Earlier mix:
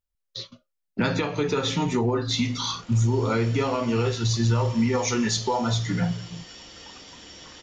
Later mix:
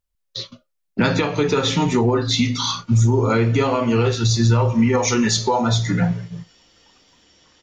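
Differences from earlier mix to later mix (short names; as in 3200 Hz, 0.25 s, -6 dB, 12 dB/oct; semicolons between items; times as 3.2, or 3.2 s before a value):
speech +6.0 dB; background -10.5 dB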